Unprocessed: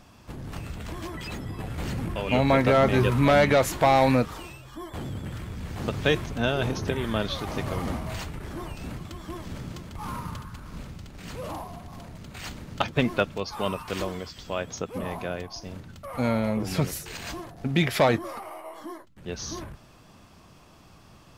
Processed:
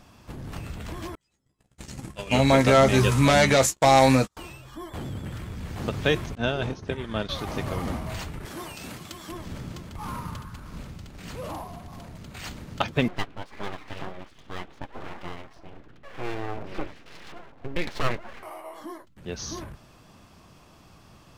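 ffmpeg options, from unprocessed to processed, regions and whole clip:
-filter_complex "[0:a]asettb=1/sr,asplit=3[s0][s1][s2];[s0]atrim=end=1.154[s3];[s1]atrim=start=1.15:end=4.37,asetpts=PTS-STARTPTS,afade=t=in:d=0.004:c=qsin,afade=t=out:st=3.216:d=0.004:c=qsin,agate=range=0.00708:threshold=0.0355:ratio=16:release=100:detection=peak,equalizer=f=7200:w=0.8:g=14.5,asplit=2[s4][s5];[s5]adelay=15,volume=0.398[s6];[s4][s6]amix=inputs=2:normalize=0,atrim=end_sample=142002[s7];[s2]atrim=start=4.366[s8];[s3][s7]acrossfade=d=0.004:c1=hsin:c2=qsin[s9];[s9][s8]acrossfade=d=0.004:c1=qsin:c2=hsin,asettb=1/sr,asplit=3[s10][s11][s12];[s10]atrim=end=6.354[s13];[s11]atrim=start=6.35:end=7.29,asetpts=PTS-STARTPTS,afade=t=in:d=0.004:c=qsin,afade=t=out:st=0.936:d=0.004:c=qsin,lowpass=7600,agate=range=0.0224:threshold=0.0631:ratio=3:release=100:detection=peak[s14];[s12]atrim=start=7.286[s15];[s13][s14]acrossfade=d=0.004:c1=hsin:c2=qsin[s16];[s16][s15]acrossfade=d=0.004:c1=qsin:c2=hsin,asettb=1/sr,asplit=3[s17][s18][s19];[s17]atrim=end=8.454[s20];[s18]atrim=start=8.45:end=9.32,asetpts=PTS-STARTPTS,afade=t=in:d=0.004:c=qsin,afade=t=out:st=0.866:d=0.004:c=qsin,highpass=f=220:p=1,highshelf=f=2500:g=8.5[s21];[s19]atrim=start=9.316[s22];[s20][s21]acrossfade=d=0.004:c1=hsin:c2=qsin[s23];[s23][s22]acrossfade=d=0.004:c1=qsin:c2=hsin,asettb=1/sr,asplit=3[s24][s25][s26];[s24]atrim=end=13.084[s27];[s25]atrim=start=13.08:end=18.43,asetpts=PTS-STARTPTS,afade=t=in:d=0.004:c=qsin,afade=t=out:st=5.346:d=0.004:c=qsin,lowpass=f=3000:w=0.5412,lowpass=f=3000:w=1.3066,flanger=delay=5.1:depth=2.7:regen=40:speed=1.9:shape=sinusoidal,aeval=exprs='abs(val(0))':c=same[s28];[s26]atrim=start=18.426[s29];[s27][s28]acrossfade=d=0.004:c1=hsin:c2=qsin[s30];[s30][s29]acrossfade=d=0.004:c1=qsin:c2=hsin"

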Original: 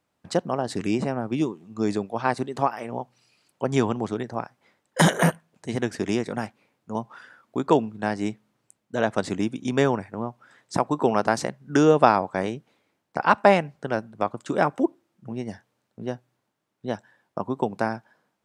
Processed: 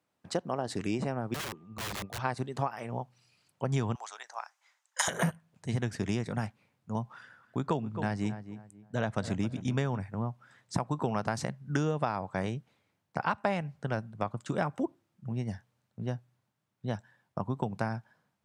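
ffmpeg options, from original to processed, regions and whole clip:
-filter_complex "[0:a]asettb=1/sr,asplit=3[s0][s1][s2];[s0]atrim=end=1.344[s3];[s1]atrim=start=1.34:end=2.19,asetpts=PTS-STARTPTS,afade=t=in:d=0.004:c=qsin,afade=t=out:st=0.846:d=0.004:c=qsin,lowpass=f=2000:p=1,aeval=exprs='(mod(22.4*val(0)+1,2)-1)/22.4':c=same,aeval=exprs='val(0)+0.001*sin(2*PI*1200*n/s)':c=same[s4];[s2]atrim=start=2.186[s5];[s3][s4]acrossfade=d=0.004:c1=hsin:c2=qsin[s6];[s6][s5]acrossfade=d=0.004:c1=qsin:c2=hsin,asettb=1/sr,asplit=3[s7][s8][s9];[s7]atrim=end=3.954[s10];[s8]atrim=start=3.95:end=5.08,asetpts=PTS-STARTPTS,afade=t=in:d=0.004:c=qsin,afade=t=out:st=1.126:d=0.004:c=qsin,highpass=f=810:w=0.5412,highpass=f=810:w=1.3066,equalizer=f=6600:t=o:w=0.65:g=10.5[s11];[s9]atrim=start=5.076[s12];[s10][s11]acrossfade=d=0.004:c1=hsin:c2=qsin[s13];[s13][s12]acrossfade=d=0.004:c1=qsin:c2=hsin,asettb=1/sr,asplit=3[s14][s15][s16];[s14]atrim=end=7.134[s17];[s15]atrim=start=7.13:end=10.01,asetpts=PTS-STARTPTS,afade=t=in:d=0.004:c=qsin,afade=t=out:st=2.876:d=0.004:c=qsin,highshelf=f=7600:g=-2.5,asplit=2[s18][s19];[s19]adelay=266,lowpass=f=1700:p=1,volume=0.224,asplit=2[s20][s21];[s21]adelay=266,lowpass=f=1700:p=1,volume=0.29,asplit=2[s22][s23];[s23]adelay=266,lowpass=f=1700:p=1,volume=0.29[s24];[s18][s20][s22][s24]amix=inputs=4:normalize=0,atrim=end_sample=127008[s25];[s16]atrim=start=10.006[s26];[s17][s25]acrossfade=d=0.004:c1=hsin:c2=qsin[s27];[s27][s26]acrossfade=d=0.004:c1=qsin:c2=hsin,highpass=86,asubboost=boost=7:cutoff=120,acompressor=threshold=0.0891:ratio=6,volume=0.596"

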